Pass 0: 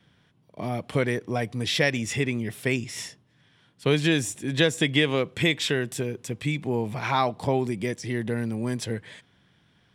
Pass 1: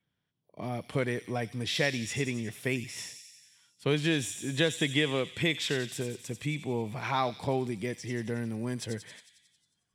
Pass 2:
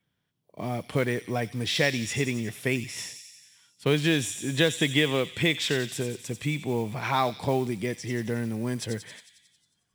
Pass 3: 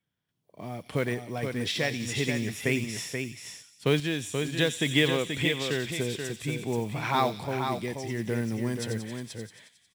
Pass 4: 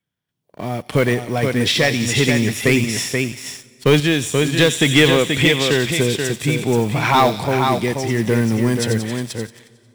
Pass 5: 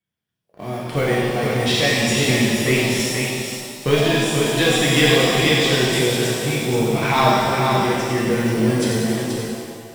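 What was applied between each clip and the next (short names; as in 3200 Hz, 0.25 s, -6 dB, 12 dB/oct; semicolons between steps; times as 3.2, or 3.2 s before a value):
thin delay 90 ms, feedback 67%, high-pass 3700 Hz, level -6 dB; spectral noise reduction 15 dB; gain -5.5 dB
modulation noise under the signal 26 dB; gain +4 dB
random-step tremolo; echo 0.481 s -6 dB
sample leveller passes 2; on a send at -23 dB: reverb RT60 3.3 s, pre-delay 38 ms; on the sum: gain +5.5 dB
shimmer reverb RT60 1.7 s, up +7 st, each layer -8 dB, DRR -4.5 dB; gain -7 dB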